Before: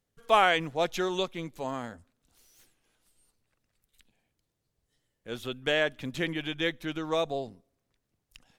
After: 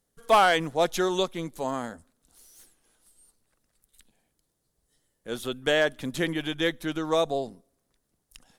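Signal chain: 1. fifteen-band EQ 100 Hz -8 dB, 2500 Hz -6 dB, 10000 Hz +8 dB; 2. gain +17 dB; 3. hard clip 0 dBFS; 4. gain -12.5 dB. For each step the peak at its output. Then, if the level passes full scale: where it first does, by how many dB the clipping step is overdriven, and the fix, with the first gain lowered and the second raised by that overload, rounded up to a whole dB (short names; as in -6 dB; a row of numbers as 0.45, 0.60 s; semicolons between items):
-10.0, +7.0, 0.0, -12.5 dBFS; step 2, 7.0 dB; step 2 +10 dB, step 4 -5.5 dB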